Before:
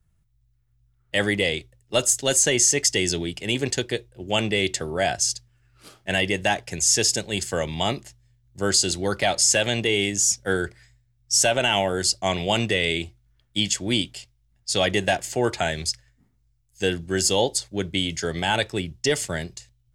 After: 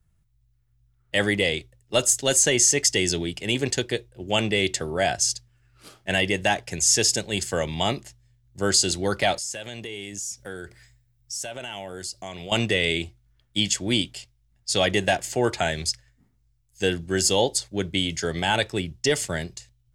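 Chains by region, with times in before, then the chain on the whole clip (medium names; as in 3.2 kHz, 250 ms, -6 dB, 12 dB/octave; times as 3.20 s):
9.36–12.52 s: compression 3:1, threshold -36 dBFS + treble shelf 12 kHz +10 dB
whole clip: none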